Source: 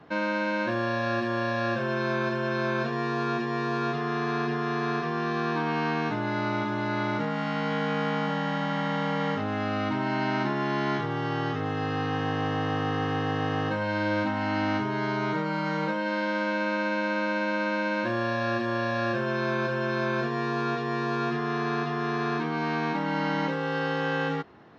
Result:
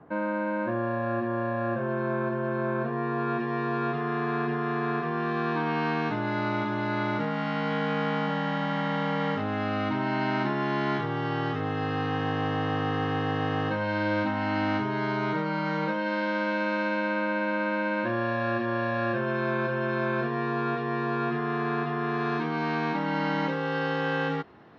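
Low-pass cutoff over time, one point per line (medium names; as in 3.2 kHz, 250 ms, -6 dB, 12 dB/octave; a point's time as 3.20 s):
2.80 s 1.3 kHz
3.50 s 2.5 kHz
5.05 s 2.5 kHz
5.89 s 4.6 kHz
16.82 s 4.6 kHz
17.26 s 2.8 kHz
22.06 s 2.8 kHz
22.48 s 5.2 kHz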